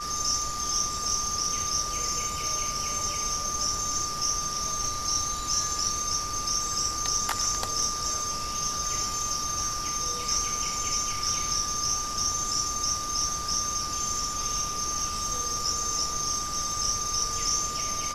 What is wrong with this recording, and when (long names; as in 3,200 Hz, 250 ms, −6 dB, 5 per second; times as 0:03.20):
whistle 1,200 Hz −33 dBFS